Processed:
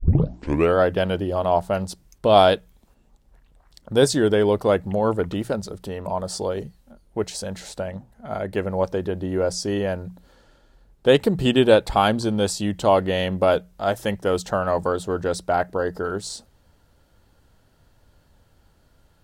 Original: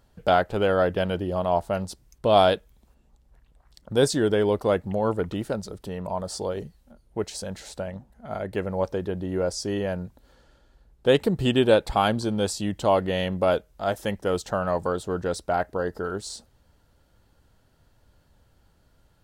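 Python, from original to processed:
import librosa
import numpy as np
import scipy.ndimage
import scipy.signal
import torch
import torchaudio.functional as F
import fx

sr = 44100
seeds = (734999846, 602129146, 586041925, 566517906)

y = fx.tape_start_head(x, sr, length_s=0.76)
y = fx.hum_notches(y, sr, base_hz=60, count=3)
y = y * 10.0 ** (3.5 / 20.0)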